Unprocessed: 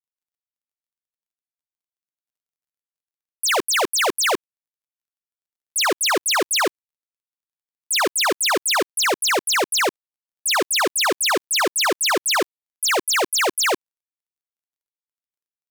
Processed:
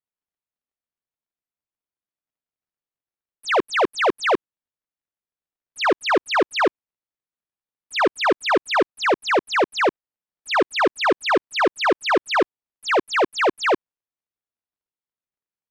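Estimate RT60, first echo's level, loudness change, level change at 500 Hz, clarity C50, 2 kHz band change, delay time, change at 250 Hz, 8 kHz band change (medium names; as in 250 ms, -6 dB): no reverb, no echo, -1.5 dB, +3.5 dB, no reverb, -1.0 dB, no echo, +4.0 dB, -18.5 dB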